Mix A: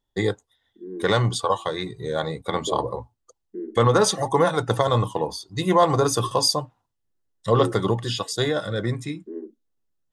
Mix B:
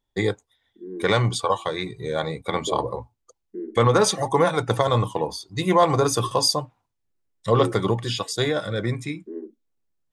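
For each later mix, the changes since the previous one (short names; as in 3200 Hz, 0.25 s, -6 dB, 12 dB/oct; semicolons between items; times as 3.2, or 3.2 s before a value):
master: remove notch 2300 Hz, Q 5.8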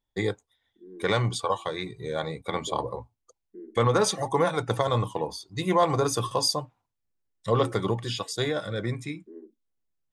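first voice -4.5 dB; second voice -10.5 dB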